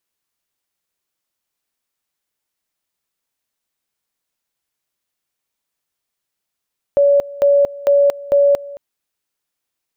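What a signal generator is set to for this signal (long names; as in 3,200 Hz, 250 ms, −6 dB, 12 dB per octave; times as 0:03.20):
tone at two levels in turn 567 Hz −8.5 dBFS, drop 20 dB, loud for 0.23 s, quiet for 0.22 s, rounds 4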